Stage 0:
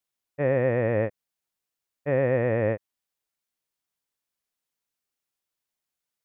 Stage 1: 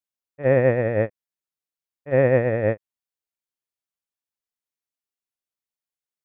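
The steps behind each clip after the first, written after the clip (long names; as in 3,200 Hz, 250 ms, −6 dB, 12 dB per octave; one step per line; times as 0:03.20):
noise gate −22 dBFS, range −16 dB
level +7.5 dB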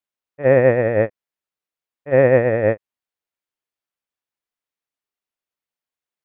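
bass and treble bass −4 dB, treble −8 dB
level +5 dB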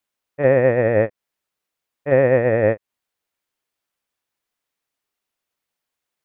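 downward compressor 3 to 1, threshold −23 dBFS, peak gain reduction 11 dB
level +8 dB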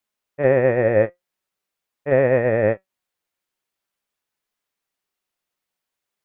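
flanger 0.46 Hz, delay 4.6 ms, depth 1.1 ms, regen +77%
level +3.5 dB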